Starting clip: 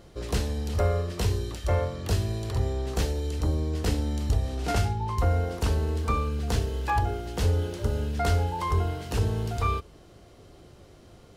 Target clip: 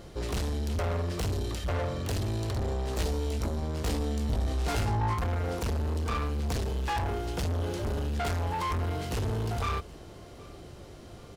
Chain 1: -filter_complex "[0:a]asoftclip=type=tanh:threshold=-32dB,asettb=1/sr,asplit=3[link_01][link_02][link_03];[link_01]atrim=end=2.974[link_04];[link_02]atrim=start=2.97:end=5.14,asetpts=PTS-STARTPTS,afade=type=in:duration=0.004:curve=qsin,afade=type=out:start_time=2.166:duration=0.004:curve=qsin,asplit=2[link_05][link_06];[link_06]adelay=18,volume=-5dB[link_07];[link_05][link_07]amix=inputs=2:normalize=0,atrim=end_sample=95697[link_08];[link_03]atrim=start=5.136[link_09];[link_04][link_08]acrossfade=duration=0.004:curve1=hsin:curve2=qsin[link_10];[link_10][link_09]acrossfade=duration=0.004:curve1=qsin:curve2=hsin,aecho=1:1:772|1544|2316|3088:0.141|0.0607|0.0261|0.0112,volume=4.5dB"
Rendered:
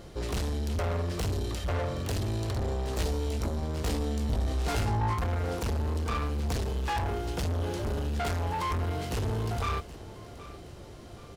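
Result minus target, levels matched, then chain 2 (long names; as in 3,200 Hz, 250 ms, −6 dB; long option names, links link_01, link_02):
echo-to-direct +7 dB
-filter_complex "[0:a]asoftclip=type=tanh:threshold=-32dB,asettb=1/sr,asplit=3[link_01][link_02][link_03];[link_01]atrim=end=2.974[link_04];[link_02]atrim=start=2.97:end=5.14,asetpts=PTS-STARTPTS,afade=type=in:duration=0.004:curve=qsin,afade=type=out:start_time=2.166:duration=0.004:curve=qsin,asplit=2[link_05][link_06];[link_06]adelay=18,volume=-5dB[link_07];[link_05][link_07]amix=inputs=2:normalize=0,atrim=end_sample=95697[link_08];[link_03]atrim=start=5.136[link_09];[link_04][link_08]acrossfade=duration=0.004:curve1=hsin:curve2=qsin[link_10];[link_10][link_09]acrossfade=duration=0.004:curve1=qsin:curve2=hsin,aecho=1:1:772|1544|2316:0.0631|0.0271|0.0117,volume=4.5dB"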